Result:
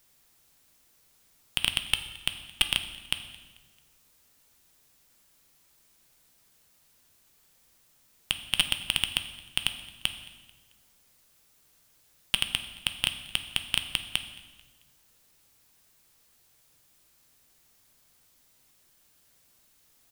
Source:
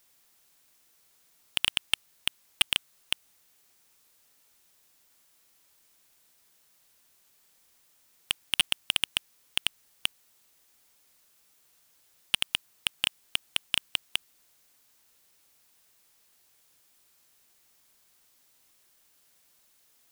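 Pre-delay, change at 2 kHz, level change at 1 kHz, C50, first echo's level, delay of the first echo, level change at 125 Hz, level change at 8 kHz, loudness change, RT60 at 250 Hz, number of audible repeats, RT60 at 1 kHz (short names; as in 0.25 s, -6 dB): 6 ms, +0.5 dB, +1.0 dB, 10.5 dB, -24.0 dB, 0.22 s, +8.0 dB, +0.5 dB, +0.5 dB, 1.6 s, 2, 1.3 s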